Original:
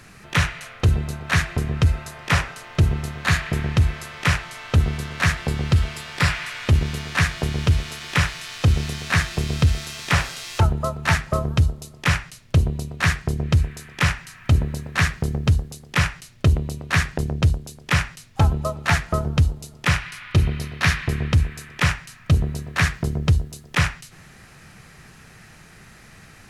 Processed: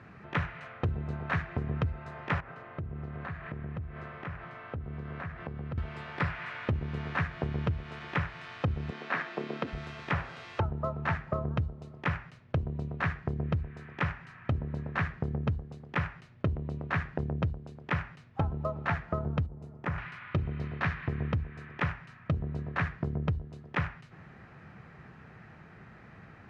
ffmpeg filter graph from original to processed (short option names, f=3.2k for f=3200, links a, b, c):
-filter_complex "[0:a]asettb=1/sr,asplit=3[a][b][c];[a]atrim=end=2.404[d];[b]atrim=start=2.4:end=5.78,asetpts=PTS-STARTPTS,afade=t=in:d=0.004:c=qsin,afade=t=out:st=3.376:d=0.004:c=qsin,lowpass=f=1.8k:p=1,bandreject=f=880:w=20,acompressor=threshold=-31dB:ratio=8:attack=3.2:release=140:knee=1:detection=peak[e];[c]atrim=start=5.776[f];[d][e]acrossfade=d=0.004:c1=hsin:c2=qsin[g];[g][f]acrossfade=d=0.004:c1=qsin:c2=hsin,asettb=1/sr,asplit=3[h][i][j];[h]atrim=end=8.904[k];[i]atrim=start=8.9:end=9.73,asetpts=PTS-STARTPTS,afade=t=in:d=0.004:c=qsin,afade=t=out:st=0.826:d=0.004:c=qsin,highpass=f=240:w=0.5412,highpass=f=240:w=1.3066,acrossover=split=6700[l][m];[m]acompressor=threshold=-50dB:ratio=4:attack=1:release=60[n];[l][n]amix=inputs=2:normalize=0[o];[j]atrim=start=9.726[p];[k][o]acrossfade=d=0.004:c1=hsin:c2=qsin[q];[q][p]acrossfade=d=0.004:c1=qsin:c2=hsin,asettb=1/sr,asplit=3[r][s][t];[r]atrim=end=19.464[u];[s]atrim=start=19.46:end=19.98,asetpts=PTS-STARTPTS,afade=t=in:d=0.004:c=qsin,afade=t=out:st=0.516:d=0.004:c=qsin,equalizer=f=3.6k:w=0.72:g=-10.5,acompressor=threshold=-22dB:ratio=6:attack=3.2:release=140:knee=1:detection=peak[v];[t]atrim=start=19.976[w];[u][v]acrossfade=d=0.004:c1=hsin:c2=qsin[x];[x][w]acrossfade=d=0.004:c1=qsin:c2=hsin,lowpass=1.6k,acompressor=threshold=-25dB:ratio=4,highpass=70,volume=-2.5dB"